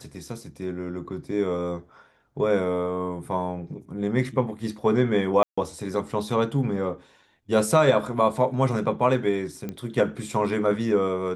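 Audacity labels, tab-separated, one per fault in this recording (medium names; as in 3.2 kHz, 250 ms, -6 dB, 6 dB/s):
5.430000	5.580000	dropout 145 ms
9.690000	9.690000	pop -19 dBFS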